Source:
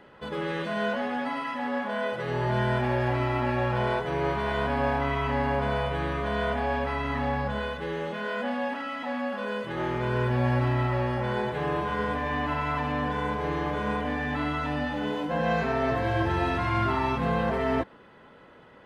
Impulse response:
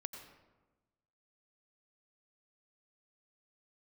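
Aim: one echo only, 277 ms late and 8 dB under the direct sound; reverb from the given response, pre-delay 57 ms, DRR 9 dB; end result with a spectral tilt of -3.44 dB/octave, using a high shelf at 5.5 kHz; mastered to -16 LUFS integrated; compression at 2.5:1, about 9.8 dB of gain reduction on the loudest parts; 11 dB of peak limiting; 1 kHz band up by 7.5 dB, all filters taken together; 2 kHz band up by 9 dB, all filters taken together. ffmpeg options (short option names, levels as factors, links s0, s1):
-filter_complex "[0:a]equalizer=f=1000:t=o:g=7,equalizer=f=2000:t=o:g=8,highshelf=f=5500:g=8,acompressor=threshold=0.0224:ratio=2.5,alimiter=level_in=1.78:limit=0.0631:level=0:latency=1,volume=0.562,aecho=1:1:277:0.398,asplit=2[s0][s1];[1:a]atrim=start_sample=2205,adelay=57[s2];[s1][s2]afir=irnorm=-1:irlink=0,volume=0.473[s3];[s0][s3]amix=inputs=2:normalize=0,volume=10"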